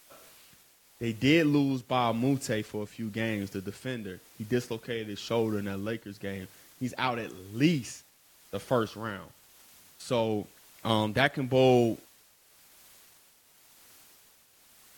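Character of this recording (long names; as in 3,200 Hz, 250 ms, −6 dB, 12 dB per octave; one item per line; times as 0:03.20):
a quantiser's noise floor 10 bits, dither triangular
tremolo triangle 0.95 Hz, depth 60%
AAC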